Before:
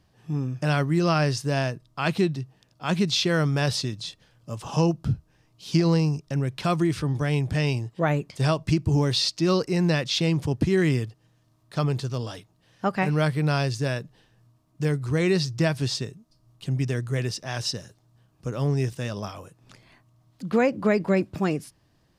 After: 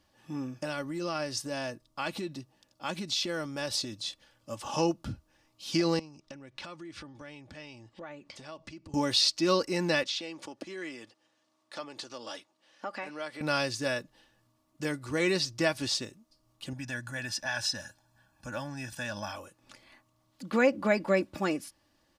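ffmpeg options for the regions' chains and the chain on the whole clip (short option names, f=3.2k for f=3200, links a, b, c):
-filter_complex "[0:a]asettb=1/sr,asplit=3[a][b][c];[a]atrim=end=0.504[d];[b]atrim=start=0.5:end=4.06,asetpts=PTS-STARTPTS,afade=t=in:d=0.004:c=qsin,afade=t=out:st=3.556:d=0.004:c=qsin,equalizer=f=1.9k:t=o:w=2.1:g=-4,acompressor=threshold=-25dB:ratio=6:attack=3.2:release=140:knee=1:detection=peak[e];[c]atrim=start=4.056[f];[d][e]acrossfade=d=0.004:c1=hsin:c2=qsin[g];[g][f]acrossfade=d=0.004:c1=qsin:c2=hsin,asettb=1/sr,asplit=3[h][i][j];[h]atrim=end=5.994[k];[i]atrim=start=5.99:end=8.94,asetpts=PTS-STARTPTS,afade=t=in:d=0.004:c=qsin,afade=t=out:st=2.946:d=0.004:c=qsin,lowpass=6.1k,acompressor=threshold=-36dB:ratio=10:attack=3.2:release=140:knee=1:detection=peak[l];[j]atrim=start=8.936[m];[k][l]acrossfade=d=0.004:c1=hsin:c2=qsin[n];[n][m]acrossfade=d=0.004:c1=qsin:c2=hsin,asettb=1/sr,asplit=3[o][p][q];[o]atrim=end=10.034[r];[p]atrim=start=10.03:end=13.41,asetpts=PTS-STARTPTS,afade=t=in:d=0.004:c=qsin,afade=t=out:st=3.376:d=0.004:c=qsin,acompressor=threshold=-28dB:ratio=12:attack=3.2:release=140:knee=1:detection=peak,highpass=300,lowpass=7.9k[s];[q]atrim=start=13.406[t];[r][s]acrossfade=d=0.004:c1=hsin:c2=qsin[u];[u][t]acrossfade=d=0.004:c1=qsin:c2=hsin,asettb=1/sr,asplit=3[v][w][x];[v]atrim=end=16.734[y];[w]atrim=start=16.73:end=19.36,asetpts=PTS-STARTPTS,afade=t=in:d=0.004:c=qsin,afade=t=out:st=2.626:d=0.004:c=qsin,aecho=1:1:1.2:0.81,atrim=end_sample=115983,acompressor=threshold=-28dB:ratio=2.5:attack=3.2:release=140:knee=1:detection=peak,equalizer=f=1.5k:t=o:w=0.37:g=9[z];[x]atrim=start=19.356[aa];[y][z]acrossfade=d=0.004:c1=hsin:c2=qsin[ab];[ab][aa]acrossfade=d=0.004:c1=qsin:c2=hsin,lowshelf=f=300:g=-9.5,aecho=1:1:3.5:0.59,volume=-1.5dB"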